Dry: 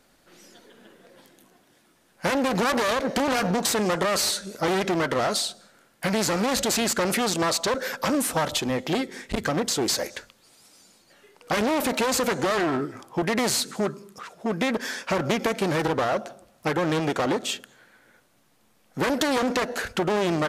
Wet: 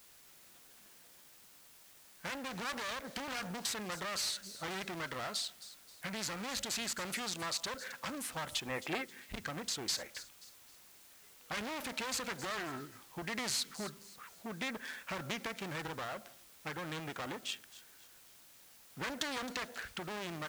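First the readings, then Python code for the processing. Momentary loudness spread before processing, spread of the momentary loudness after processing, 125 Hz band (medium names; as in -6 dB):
7 LU, 20 LU, -16.5 dB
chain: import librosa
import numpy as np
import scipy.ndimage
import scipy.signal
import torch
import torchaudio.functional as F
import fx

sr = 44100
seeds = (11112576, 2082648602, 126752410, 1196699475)

y = fx.wiener(x, sr, points=9)
y = fx.spec_box(y, sr, start_s=8.67, length_s=0.38, low_hz=280.0, high_hz=2800.0, gain_db=7)
y = fx.high_shelf(y, sr, hz=7500.0, db=-10.0)
y = fx.rider(y, sr, range_db=10, speed_s=2.0)
y = fx.tone_stack(y, sr, knobs='5-5-5')
y = fx.quant_dither(y, sr, seeds[0], bits=10, dither='triangular')
y = fx.echo_wet_highpass(y, sr, ms=266, feedback_pct=37, hz=4300.0, wet_db=-12.0)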